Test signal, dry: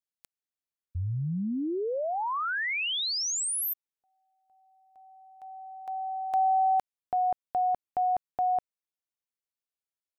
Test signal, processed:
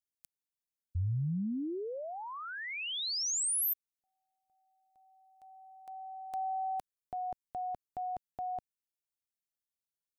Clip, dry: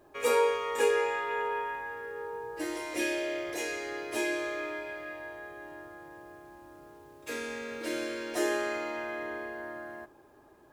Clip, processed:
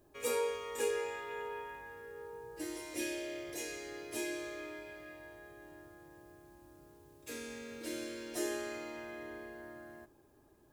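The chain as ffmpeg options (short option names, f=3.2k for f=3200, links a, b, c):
-af "equalizer=f=1.1k:w=0.32:g=-12"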